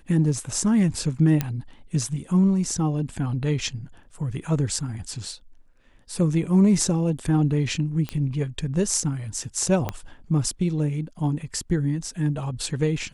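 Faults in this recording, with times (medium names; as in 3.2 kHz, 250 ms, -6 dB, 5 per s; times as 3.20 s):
1.41 s: pop -9 dBFS
8.09 s: pop -15 dBFS
9.89 s: pop -12 dBFS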